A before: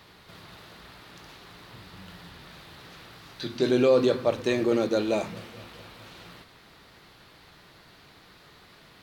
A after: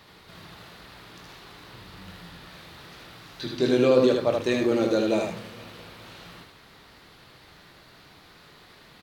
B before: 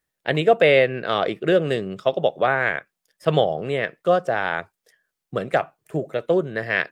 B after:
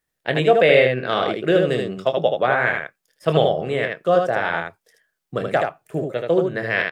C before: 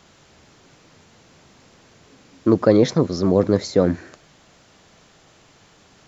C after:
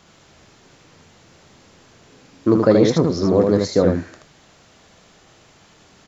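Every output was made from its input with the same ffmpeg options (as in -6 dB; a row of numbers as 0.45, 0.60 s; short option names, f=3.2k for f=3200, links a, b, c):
-af "aecho=1:1:24|78:0.282|0.631"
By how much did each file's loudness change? +1.5, +2.0, +1.5 LU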